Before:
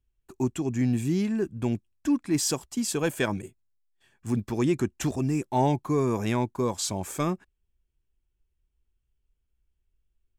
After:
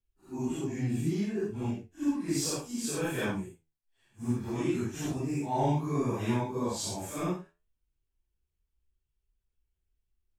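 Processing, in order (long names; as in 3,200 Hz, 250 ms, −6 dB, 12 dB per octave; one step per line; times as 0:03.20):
random phases in long frames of 200 ms
flanger 0.63 Hz, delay 8.9 ms, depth 5.9 ms, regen +77%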